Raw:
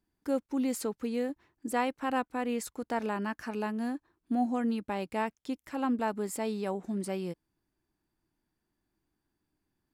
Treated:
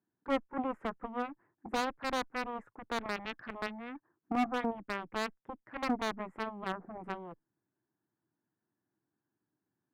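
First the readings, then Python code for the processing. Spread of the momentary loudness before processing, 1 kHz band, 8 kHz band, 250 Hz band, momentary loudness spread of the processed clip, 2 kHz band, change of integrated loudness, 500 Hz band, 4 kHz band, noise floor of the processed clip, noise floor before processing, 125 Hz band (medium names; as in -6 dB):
6 LU, -1.5 dB, -9.5 dB, -7.0 dB, 11 LU, +0.5 dB, -4.0 dB, -5.0 dB, +3.0 dB, under -85 dBFS, -84 dBFS, -7.5 dB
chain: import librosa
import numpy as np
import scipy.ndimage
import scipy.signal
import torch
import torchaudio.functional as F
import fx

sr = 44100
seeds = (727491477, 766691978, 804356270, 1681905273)

y = scipy.signal.sosfilt(scipy.signal.ellip(3, 1.0, 40, [110.0, 1700.0], 'bandpass', fs=sr, output='sos'), x)
y = fx.cheby_harmonics(y, sr, harmonics=(7,), levels_db=(-13,), full_scale_db=-16.5)
y = fx.clip_asym(y, sr, top_db=-24.0, bottom_db=-21.5)
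y = y * librosa.db_to_amplitude(1.5)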